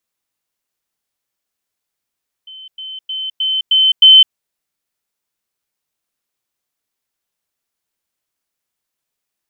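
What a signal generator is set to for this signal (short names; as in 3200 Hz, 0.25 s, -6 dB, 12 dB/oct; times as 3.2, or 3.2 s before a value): level ladder 3070 Hz -32 dBFS, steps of 6 dB, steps 6, 0.21 s 0.10 s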